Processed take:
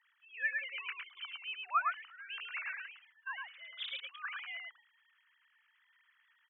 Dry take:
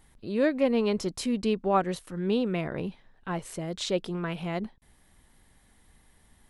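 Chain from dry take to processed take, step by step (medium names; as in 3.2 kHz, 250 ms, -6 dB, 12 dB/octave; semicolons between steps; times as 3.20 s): formants replaced by sine waves; steep high-pass 1.2 kHz 36 dB/octave; delay 108 ms -3.5 dB; trim +1 dB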